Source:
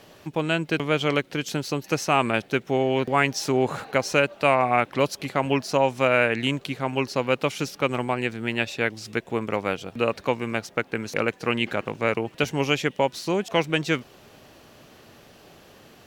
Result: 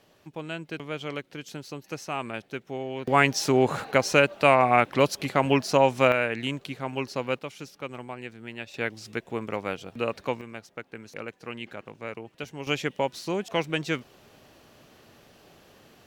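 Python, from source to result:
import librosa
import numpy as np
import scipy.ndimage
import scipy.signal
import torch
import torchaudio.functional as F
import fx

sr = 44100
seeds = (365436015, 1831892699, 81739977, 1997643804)

y = fx.gain(x, sr, db=fx.steps((0.0, -11.0), (3.07, 1.0), (6.12, -5.5), (7.39, -12.5), (8.74, -5.0), (10.41, -13.0), (12.67, -4.5)))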